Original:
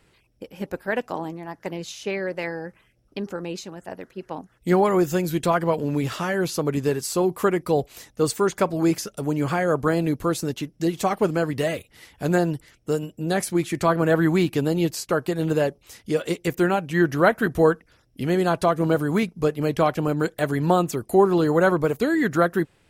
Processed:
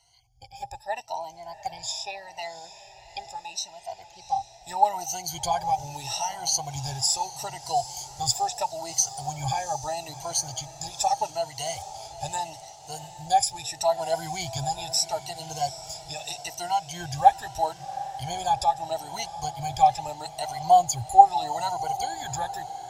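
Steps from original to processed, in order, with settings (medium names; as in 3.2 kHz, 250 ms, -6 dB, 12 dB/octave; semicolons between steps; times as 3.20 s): drifting ripple filter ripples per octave 1.9, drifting +0.78 Hz, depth 22 dB; FFT filter 120 Hz 0 dB, 200 Hz -30 dB, 500 Hz -24 dB, 800 Hz +11 dB, 1.2 kHz -22 dB, 5.9 kHz +11 dB, 11 kHz -5 dB; on a send: echo that smears into a reverb 750 ms, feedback 56%, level -14 dB; on the sum: trim -4 dB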